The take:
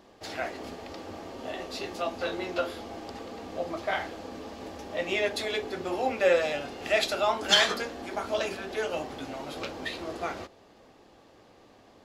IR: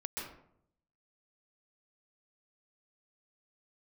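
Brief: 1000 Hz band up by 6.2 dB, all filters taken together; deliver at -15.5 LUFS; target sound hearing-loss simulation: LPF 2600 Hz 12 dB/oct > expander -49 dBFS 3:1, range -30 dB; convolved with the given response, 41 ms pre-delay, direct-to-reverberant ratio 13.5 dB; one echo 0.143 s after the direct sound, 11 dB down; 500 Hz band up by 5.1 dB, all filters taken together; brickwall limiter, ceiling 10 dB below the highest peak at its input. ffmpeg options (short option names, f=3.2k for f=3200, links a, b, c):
-filter_complex "[0:a]equalizer=f=500:t=o:g=4,equalizer=f=1k:t=o:g=7,alimiter=limit=-15.5dB:level=0:latency=1,aecho=1:1:143:0.282,asplit=2[a][b];[1:a]atrim=start_sample=2205,adelay=41[c];[b][c]afir=irnorm=-1:irlink=0,volume=-15dB[d];[a][d]amix=inputs=2:normalize=0,lowpass=2.6k,agate=range=-30dB:threshold=-49dB:ratio=3,volume=13.5dB"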